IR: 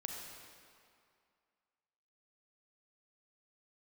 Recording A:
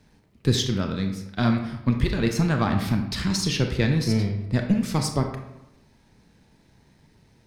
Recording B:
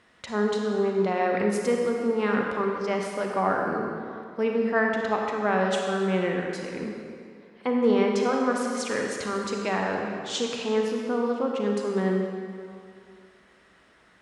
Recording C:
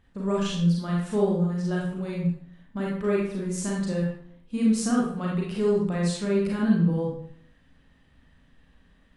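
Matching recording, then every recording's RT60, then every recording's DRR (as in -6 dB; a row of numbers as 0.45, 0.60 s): B; 0.90, 2.3, 0.65 s; 4.0, 0.5, -4.5 dB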